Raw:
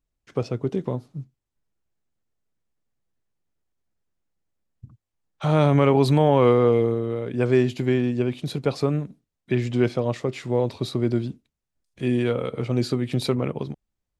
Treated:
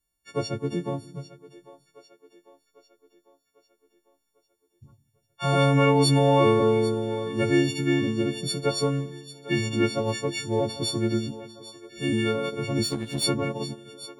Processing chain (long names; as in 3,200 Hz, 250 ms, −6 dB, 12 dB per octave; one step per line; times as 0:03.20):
every partial snapped to a pitch grid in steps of 4 semitones
echo with a time of its own for lows and highs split 350 Hz, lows 158 ms, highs 798 ms, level −16 dB
0:12.83–0:13.24: power curve on the samples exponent 1.4
level −2.5 dB